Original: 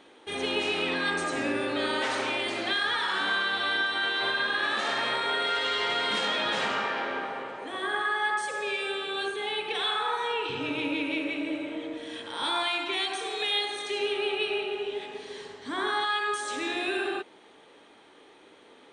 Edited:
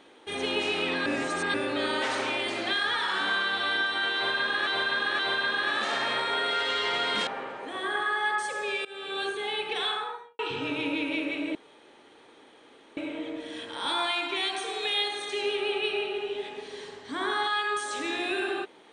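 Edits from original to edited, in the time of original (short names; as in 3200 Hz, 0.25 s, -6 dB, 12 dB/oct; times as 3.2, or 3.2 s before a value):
1.06–1.54 reverse
4.15–4.67 loop, 3 plays
6.23–7.26 cut
8.84–9.16 fade in, from -21.5 dB
9.82–10.38 studio fade out
11.54 insert room tone 1.42 s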